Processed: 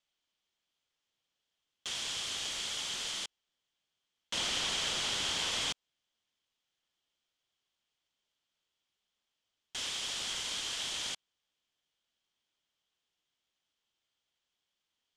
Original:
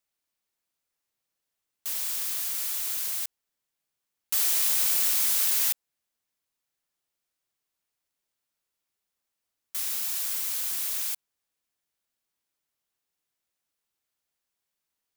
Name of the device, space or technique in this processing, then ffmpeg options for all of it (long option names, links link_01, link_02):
synthesiser wavefolder: -af "aeval=exprs='0.0473*(abs(mod(val(0)/0.0473+3,4)-2)-1)':channel_layout=same,lowpass=frequency=7100:width=0.5412,lowpass=frequency=7100:width=1.3066,equalizer=frequency=3200:width=4.3:gain=11.5"